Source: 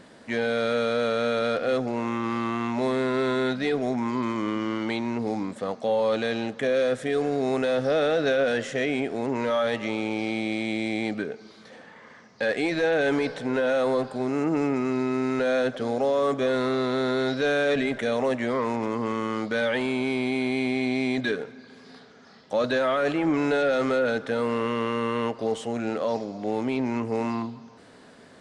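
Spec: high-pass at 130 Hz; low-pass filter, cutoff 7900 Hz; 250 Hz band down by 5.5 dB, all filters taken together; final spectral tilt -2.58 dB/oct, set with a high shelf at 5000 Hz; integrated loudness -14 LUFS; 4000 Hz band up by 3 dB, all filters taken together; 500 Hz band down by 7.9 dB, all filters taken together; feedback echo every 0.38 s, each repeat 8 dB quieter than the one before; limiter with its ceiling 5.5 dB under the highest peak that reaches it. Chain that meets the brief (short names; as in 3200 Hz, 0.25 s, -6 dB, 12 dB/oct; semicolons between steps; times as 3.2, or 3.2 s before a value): HPF 130 Hz; LPF 7900 Hz; bell 250 Hz -3.5 dB; bell 500 Hz -8.5 dB; bell 4000 Hz +5.5 dB; high shelf 5000 Hz -4.5 dB; limiter -20 dBFS; feedback echo 0.38 s, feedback 40%, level -8 dB; gain +16.5 dB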